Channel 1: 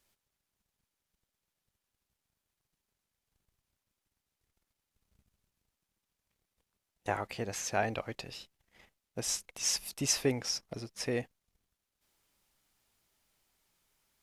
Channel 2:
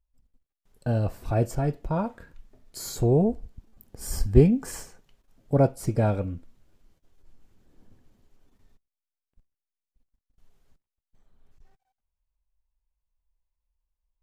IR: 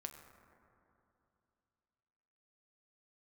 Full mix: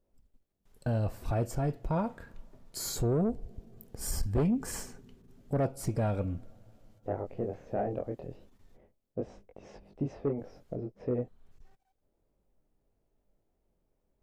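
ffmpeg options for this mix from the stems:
-filter_complex "[0:a]lowpass=1.1k,lowshelf=f=770:t=q:w=1.5:g=9.5,flanger=delay=19.5:depth=4.8:speed=0.31,volume=-2dB[a];[1:a]volume=-0.5dB,asplit=2[b][c];[c]volume=-19dB[d];[2:a]atrim=start_sample=2205[e];[d][e]afir=irnorm=-1:irlink=0[f];[a][b][f]amix=inputs=3:normalize=0,asoftclip=type=tanh:threshold=-16.5dB,alimiter=limit=-22.5dB:level=0:latency=1:release=299"

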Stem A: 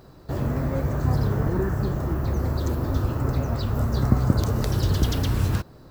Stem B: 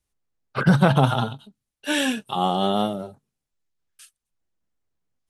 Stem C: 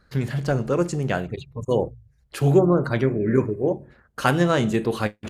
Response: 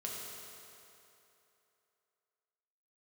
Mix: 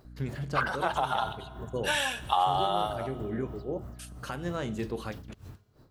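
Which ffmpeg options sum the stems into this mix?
-filter_complex "[0:a]acompressor=threshold=-32dB:ratio=6,aeval=exprs='val(0)*pow(10,-25*(0.5-0.5*cos(2*PI*3.1*n/s))/20)':c=same,volume=-9dB,asplit=2[a][b];[b]volume=-14dB[c];[1:a]acompressor=threshold=-26dB:ratio=4,highpass=f=820:t=q:w=1.8,volume=0dB,asplit=3[d][e][f];[e]volume=-14.5dB[g];[2:a]alimiter=limit=-12.5dB:level=0:latency=1:release=402,aeval=exprs='val(0)+0.0158*(sin(2*PI*60*n/s)+sin(2*PI*2*60*n/s)/2+sin(2*PI*3*60*n/s)/3+sin(2*PI*4*60*n/s)/4+sin(2*PI*5*60*n/s)/5)':c=same,adelay=50,volume=-9.5dB[h];[f]apad=whole_len=235634[i];[h][i]sidechaincompress=threshold=-30dB:ratio=8:attack=16:release=534[j];[3:a]atrim=start_sample=2205[k];[c][g]amix=inputs=2:normalize=0[l];[l][k]afir=irnorm=-1:irlink=0[m];[a][d][j][m]amix=inputs=4:normalize=0"

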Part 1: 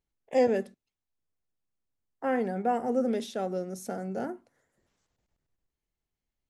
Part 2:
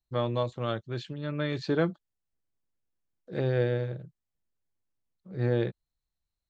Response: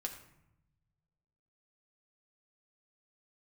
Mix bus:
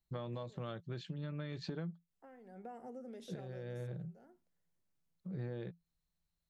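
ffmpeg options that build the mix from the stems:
-filter_complex "[0:a]acompressor=threshold=-34dB:ratio=4,volume=-11dB,afade=t=in:st=2.41:d=0.28:silence=0.281838,afade=t=out:st=3.56:d=0.34:silence=0.223872,asplit=2[a][b];[1:a]equalizer=f=170:w=5.2:g=15,acompressor=threshold=-30dB:ratio=6,volume=-0.5dB[c];[b]apad=whole_len=286402[d];[c][d]sidechaincompress=threshold=-52dB:ratio=8:attack=12:release=187[e];[a][e]amix=inputs=2:normalize=0,acompressor=threshold=-45dB:ratio=2"

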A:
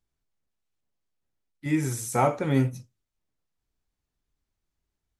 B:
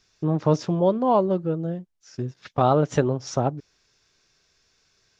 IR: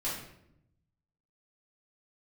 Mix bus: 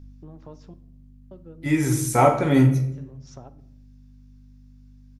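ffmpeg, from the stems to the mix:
-filter_complex "[0:a]bandreject=f=7.8k:w=21,aeval=exprs='val(0)+0.00398*(sin(2*PI*50*n/s)+sin(2*PI*2*50*n/s)/2+sin(2*PI*3*50*n/s)/3+sin(2*PI*4*50*n/s)/4+sin(2*PI*5*50*n/s)/5)':c=same,volume=3dB,asplit=3[a][b][c];[b]volume=-8.5dB[d];[1:a]acompressor=threshold=-27dB:ratio=3,volume=-14.5dB,asplit=3[e][f][g];[e]atrim=end=0.74,asetpts=PTS-STARTPTS,afade=t=out:st=0.736:d=0.004:c=hsin[h];[f]atrim=start=0.74:end=1.31,asetpts=PTS-STARTPTS,volume=0[i];[g]atrim=start=1.31,asetpts=PTS-STARTPTS,afade=t=in:d=0.004:c=hsin[j];[h][i][j]concat=n=3:v=0:a=1,asplit=2[k][l];[l]volume=-17.5dB[m];[c]apad=whole_len=233412[n];[k][n]sidechaincompress=threshold=-42dB:ratio=8:attack=16:release=373[o];[2:a]atrim=start_sample=2205[p];[d][m]amix=inputs=2:normalize=0[q];[q][p]afir=irnorm=-1:irlink=0[r];[a][o][r]amix=inputs=3:normalize=0"

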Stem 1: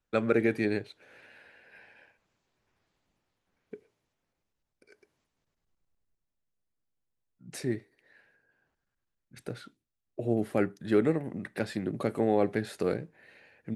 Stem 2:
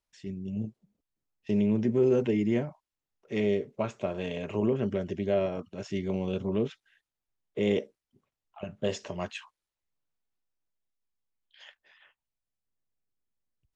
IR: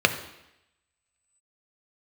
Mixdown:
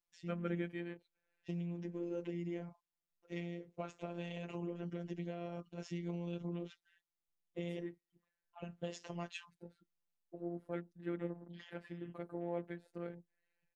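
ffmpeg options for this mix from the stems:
-filter_complex "[0:a]afwtdn=0.00708,adelay=150,volume=-11dB[a];[1:a]acompressor=threshold=-30dB:ratio=6,volume=-4dB[b];[a][b]amix=inputs=2:normalize=0,afftfilt=real='hypot(re,im)*cos(PI*b)':imag='0':win_size=1024:overlap=0.75"

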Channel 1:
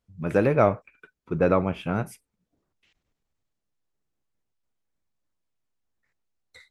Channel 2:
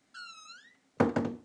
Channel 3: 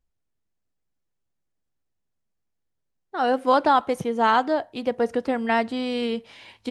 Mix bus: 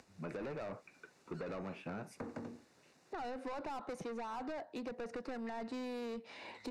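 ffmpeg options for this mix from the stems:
-filter_complex "[0:a]volume=-4dB,asplit=2[a][b];[1:a]adelay=1200,volume=-1.5dB[c];[2:a]acompressor=mode=upward:threshold=-29dB:ratio=2.5,volume=-2.5dB[d];[b]apad=whole_len=116675[e];[c][e]sidechaincompress=threshold=-36dB:ratio=8:attack=16:release=1240[f];[a][d]amix=inputs=2:normalize=0,highpass=220,lowpass=6.8k,alimiter=limit=-18.5dB:level=0:latency=1:release=32,volume=0dB[g];[f][g]amix=inputs=2:normalize=0,asoftclip=type=tanh:threshold=-32dB,bandreject=f=3.2k:w=5.3,acrossover=split=190|1100[h][i][j];[h]acompressor=threshold=-50dB:ratio=4[k];[i]acompressor=threshold=-43dB:ratio=4[l];[j]acompressor=threshold=-53dB:ratio=4[m];[k][l][m]amix=inputs=3:normalize=0"

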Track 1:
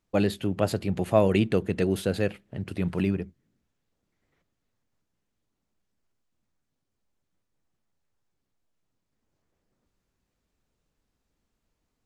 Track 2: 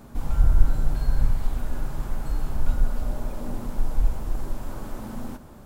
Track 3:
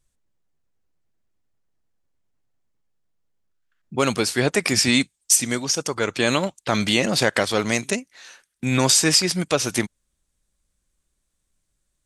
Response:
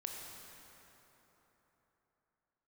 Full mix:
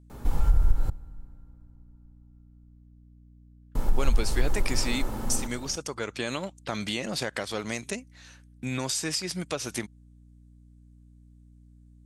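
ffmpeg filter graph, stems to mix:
-filter_complex "[1:a]acompressor=threshold=-20dB:ratio=6,aecho=1:1:2.3:0.32,adelay=100,volume=1.5dB,asplit=3[a][b][c];[a]atrim=end=0.9,asetpts=PTS-STARTPTS,afade=t=out:st=0.896:d=0.004:c=hsin[d];[b]atrim=start=0.9:end=3.75,asetpts=PTS-STARTPTS,volume=0[e];[c]atrim=start=3.75,asetpts=PTS-STARTPTS,afade=t=in:d=0.004:c=hsin[f];[d][e][f]concat=n=3:v=0:a=1,asplit=2[g][h];[h]volume=-15.5dB[i];[2:a]volume=-8dB,aeval=exprs='val(0)+0.00251*(sin(2*PI*60*n/s)+sin(2*PI*2*60*n/s)/2+sin(2*PI*3*60*n/s)/3+sin(2*PI*4*60*n/s)/4+sin(2*PI*5*60*n/s)/5)':c=same,acompressor=threshold=-27dB:ratio=3,volume=0dB[j];[3:a]atrim=start_sample=2205[k];[i][k]afir=irnorm=-1:irlink=0[l];[g][j][l]amix=inputs=3:normalize=0"

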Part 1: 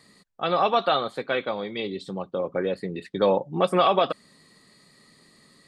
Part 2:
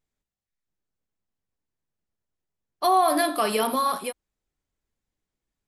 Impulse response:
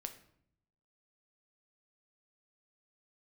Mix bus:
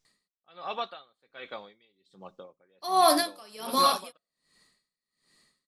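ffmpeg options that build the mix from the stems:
-filter_complex "[0:a]tiltshelf=f=900:g=-5,adelay=50,volume=-11dB,asplit=2[a][b];[b]volume=-14.5dB[c];[1:a]equalizer=f=5.5k:t=o:w=1.1:g=14.5,volume=1dB[d];[2:a]atrim=start_sample=2205[e];[c][e]afir=irnorm=-1:irlink=0[f];[a][d][f]amix=inputs=3:normalize=0,aeval=exprs='val(0)*pow(10,-29*(0.5-0.5*cos(2*PI*1.3*n/s))/20)':c=same"

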